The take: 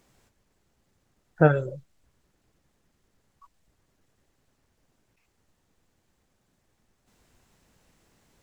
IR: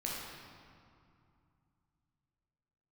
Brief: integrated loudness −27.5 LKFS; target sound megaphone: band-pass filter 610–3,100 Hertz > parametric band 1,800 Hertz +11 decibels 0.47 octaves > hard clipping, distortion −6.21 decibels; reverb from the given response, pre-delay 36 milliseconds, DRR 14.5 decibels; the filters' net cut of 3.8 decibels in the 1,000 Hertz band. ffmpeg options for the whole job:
-filter_complex "[0:a]equalizer=frequency=1000:width_type=o:gain=-7,asplit=2[link_01][link_02];[1:a]atrim=start_sample=2205,adelay=36[link_03];[link_02][link_03]afir=irnorm=-1:irlink=0,volume=-17.5dB[link_04];[link_01][link_04]amix=inputs=2:normalize=0,highpass=610,lowpass=3100,equalizer=frequency=1800:width_type=o:width=0.47:gain=11,asoftclip=type=hard:threshold=-23.5dB,volume=6dB"

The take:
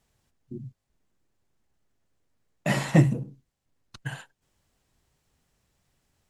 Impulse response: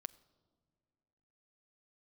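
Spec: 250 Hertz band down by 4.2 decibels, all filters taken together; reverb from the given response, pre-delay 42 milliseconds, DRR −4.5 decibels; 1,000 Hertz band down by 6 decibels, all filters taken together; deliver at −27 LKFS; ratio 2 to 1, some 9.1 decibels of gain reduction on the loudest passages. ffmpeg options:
-filter_complex "[0:a]equalizer=frequency=250:width_type=o:gain=-7.5,equalizer=frequency=1000:width_type=o:gain=-8,acompressor=threshold=-32dB:ratio=2,asplit=2[link_01][link_02];[1:a]atrim=start_sample=2205,adelay=42[link_03];[link_02][link_03]afir=irnorm=-1:irlink=0,volume=9dB[link_04];[link_01][link_04]amix=inputs=2:normalize=0,volume=3.5dB"

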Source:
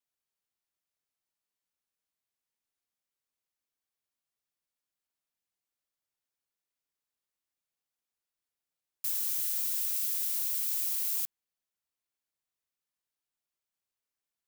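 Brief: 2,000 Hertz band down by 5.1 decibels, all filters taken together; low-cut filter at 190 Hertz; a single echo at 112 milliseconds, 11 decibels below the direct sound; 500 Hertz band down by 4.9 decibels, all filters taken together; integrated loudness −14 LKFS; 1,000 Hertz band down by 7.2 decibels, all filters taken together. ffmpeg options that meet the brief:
ffmpeg -i in.wav -af "highpass=190,equalizer=frequency=500:width_type=o:gain=-3.5,equalizer=frequency=1000:width_type=o:gain=-7,equalizer=frequency=2000:width_type=o:gain=-5,aecho=1:1:112:0.282,volume=14.5dB" out.wav

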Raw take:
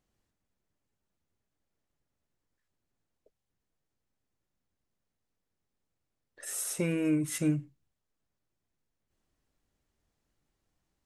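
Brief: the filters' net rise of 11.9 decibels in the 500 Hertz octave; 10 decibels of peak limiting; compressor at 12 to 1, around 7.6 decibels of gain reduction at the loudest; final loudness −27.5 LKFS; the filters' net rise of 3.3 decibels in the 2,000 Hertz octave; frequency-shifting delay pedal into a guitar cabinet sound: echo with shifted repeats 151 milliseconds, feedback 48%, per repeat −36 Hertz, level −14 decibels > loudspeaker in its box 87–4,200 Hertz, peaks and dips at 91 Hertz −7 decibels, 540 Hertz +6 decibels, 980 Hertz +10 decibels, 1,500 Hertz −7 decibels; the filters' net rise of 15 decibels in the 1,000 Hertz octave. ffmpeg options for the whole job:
ffmpeg -i in.wav -filter_complex "[0:a]equalizer=frequency=500:width_type=o:gain=8,equalizer=frequency=1000:width_type=o:gain=8.5,equalizer=frequency=2000:width_type=o:gain=3,acompressor=threshold=-27dB:ratio=12,alimiter=level_in=4dB:limit=-24dB:level=0:latency=1,volume=-4dB,asplit=6[link_01][link_02][link_03][link_04][link_05][link_06];[link_02]adelay=151,afreqshift=-36,volume=-14dB[link_07];[link_03]adelay=302,afreqshift=-72,volume=-20.4dB[link_08];[link_04]adelay=453,afreqshift=-108,volume=-26.8dB[link_09];[link_05]adelay=604,afreqshift=-144,volume=-33.1dB[link_10];[link_06]adelay=755,afreqshift=-180,volume=-39.5dB[link_11];[link_01][link_07][link_08][link_09][link_10][link_11]amix=inputs=6:normalize=0,highpass=87,equalizer=frequency=91:width_type=q:width=4:gain=-7,equalizer=frequency=540:width_type=q:width=4:gain=6,equalizer=frequency=980:width_type=q:width=4:gain=10,equalizer=frequency=1500:width_type=q:width=4:gain=-7,lowpass=frequency=4200:width=0.5412,lowpass=frequency=4200:width=1.3066,volume=10dB" out.wav

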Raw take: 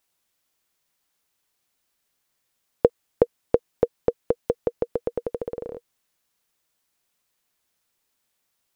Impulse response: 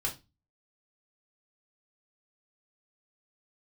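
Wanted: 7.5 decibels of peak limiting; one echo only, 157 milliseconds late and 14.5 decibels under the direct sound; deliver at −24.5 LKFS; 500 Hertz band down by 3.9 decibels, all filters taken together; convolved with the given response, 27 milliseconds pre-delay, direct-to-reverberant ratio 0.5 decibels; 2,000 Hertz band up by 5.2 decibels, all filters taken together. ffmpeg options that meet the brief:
-filter_complex "[0:a]equalizer=frequency=500:width_type=o:gain=-4.5,equalizer=frequency=2000:width_type=o:gain=7,alimiter=limit=-10.5dB:level=0:latency=1,aecho=1:1:157:0.188,asplit=2[link_01][link_02];[1:a]atrim=start_sample=2205,adelay=27[link_03];[link_02][link_03]afir=irnorm=-1:irlink=0,volume=-4.5dB[link_04];[link_01][link_04]amix=inputs=2:normalize=0,volume=7dB"

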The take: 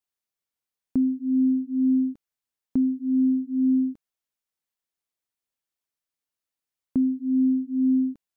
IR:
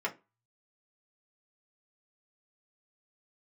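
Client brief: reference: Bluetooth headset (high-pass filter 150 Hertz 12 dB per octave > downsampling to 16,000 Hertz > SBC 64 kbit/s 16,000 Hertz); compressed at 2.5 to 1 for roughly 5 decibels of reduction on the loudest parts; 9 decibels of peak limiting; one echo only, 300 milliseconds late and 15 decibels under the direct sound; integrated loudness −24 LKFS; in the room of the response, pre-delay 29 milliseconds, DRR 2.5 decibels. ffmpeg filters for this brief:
-filter_complex "[0:a]acompressor=threshold=-26dB:ratio=2.5,alimiter=level_in=1.5dB:limit=-24dB:level=0:latency=1,volume=-1.5dB,aecho=1:1:300:0.178,asplit=2[link_01][link_02];[1:a]atrim=start_sample=2205,adelay=29[link_03];[link_02][link_03]afir=irnorm=-1:irlink=0,volume=-8.5dB[link_04];[link_01][link_04]amix=inputs=2:normalize=0,highpass=150,aresample=16000,aresample=44100,volume=5.5dB" -ar 16000 -c:a sbc -b:a 64k

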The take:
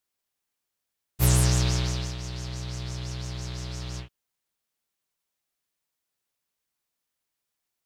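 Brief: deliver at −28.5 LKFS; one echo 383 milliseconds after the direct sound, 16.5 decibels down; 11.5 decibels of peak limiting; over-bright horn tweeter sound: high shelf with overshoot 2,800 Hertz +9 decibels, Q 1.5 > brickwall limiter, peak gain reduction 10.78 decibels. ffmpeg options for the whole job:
ffmpeg -i in.wav -af "alimiter=limit=-21dB:level=0:latency=1,highshelf=frequency=2800:width_type=q:width=1.5:gain=9,aecho=1:1:383:0.15,volume=3.5dB,alimiter=limit=-20dB:level=0:latency=1" out.wav

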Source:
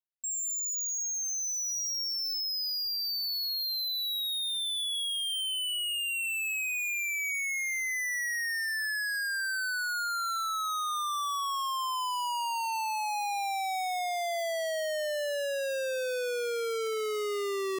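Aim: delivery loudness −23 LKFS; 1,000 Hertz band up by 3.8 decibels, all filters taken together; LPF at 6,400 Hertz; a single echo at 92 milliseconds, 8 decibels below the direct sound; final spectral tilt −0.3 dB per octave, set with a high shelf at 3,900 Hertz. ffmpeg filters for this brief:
ffmpeg -i in.wav -af "lowpass=6400,equalizer=frequency=1000:width_type=o:gain=4.5,highshelf=frequency=3900:gain=4,aecho=1:1:92:0.398,volume=5dB" out.wav

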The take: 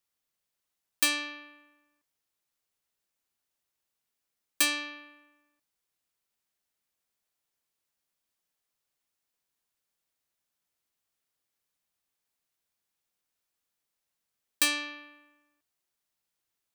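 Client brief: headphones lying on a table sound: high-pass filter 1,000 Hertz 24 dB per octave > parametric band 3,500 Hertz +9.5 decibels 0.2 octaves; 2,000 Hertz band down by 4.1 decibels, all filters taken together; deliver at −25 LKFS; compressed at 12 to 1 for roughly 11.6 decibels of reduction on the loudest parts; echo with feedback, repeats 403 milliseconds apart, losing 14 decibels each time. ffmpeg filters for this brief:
ffmpeg -i in.wav -af "equalizer=frequency=2000:width_type=o:gain=-5.5,acompressor=threshold=-33dB:ratio=12,highpass=frequency=1000:width=0.5412,highpass=frequency=1000:width=1.3066,equalizer=frequency=3500:width_type=o:width=0.2:gain=9.5,aecho=1:1:403|806:0.2|0.0399,volume=15.5dB" out.wav

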